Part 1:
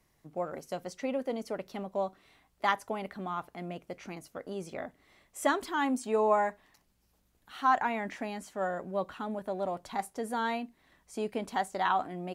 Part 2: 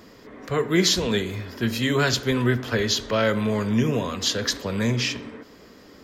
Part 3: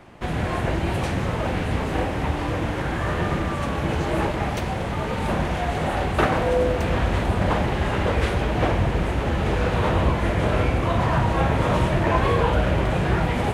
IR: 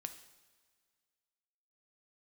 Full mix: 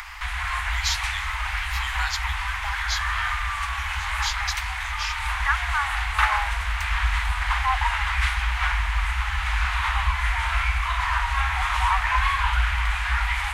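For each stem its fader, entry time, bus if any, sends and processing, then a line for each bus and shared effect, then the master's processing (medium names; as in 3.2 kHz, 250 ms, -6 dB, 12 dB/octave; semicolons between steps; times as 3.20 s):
+3.0 dB, 0.00 s, no send, LFO low-pass sine 0.25 Hz 560–2200 Hz
-5.0 dB, 0.00 s, no send, none
+3.0 dB, 0.00 s, no send, peaking EQ 2.1 kHz +4.5 dB 0.39 oct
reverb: none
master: inverse Chebyshev band-stop 110–570 Hz, stop band 40 dB; upward compressor, threshold -28 dBFS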